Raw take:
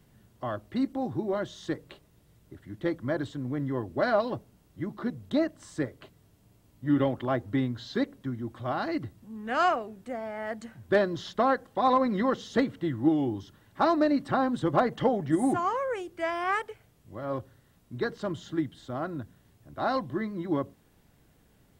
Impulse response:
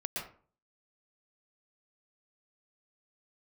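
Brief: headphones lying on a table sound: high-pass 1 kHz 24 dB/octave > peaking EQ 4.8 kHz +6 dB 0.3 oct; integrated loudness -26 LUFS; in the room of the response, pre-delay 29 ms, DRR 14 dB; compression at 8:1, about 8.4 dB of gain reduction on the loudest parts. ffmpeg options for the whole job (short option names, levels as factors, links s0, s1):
-filter_complex "[0:a]acompressor=threshold=0.0447:ratio=8,asplit=2[s0][s1];[1:a]atrim=start_sample=2205,adelay=29[s2];[s1][s2]afir=irnorm=-1:irlink=0,volume=0.15[s3];[s0][s3]amix=inputs=2:normalize=0,highpass=f=1000:w=0.5412,highpass=f=1000:w=1.3066,equalizer=f=4800:t=o:w=0.3:g=6,volume=6.31"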